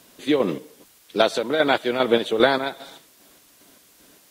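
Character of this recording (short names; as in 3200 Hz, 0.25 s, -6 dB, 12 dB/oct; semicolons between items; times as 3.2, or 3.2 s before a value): chopped level 2.5 Hz, depth 60%, duty 45%; a quantiser's noise floor 10-bit, dither triangular; Vorbis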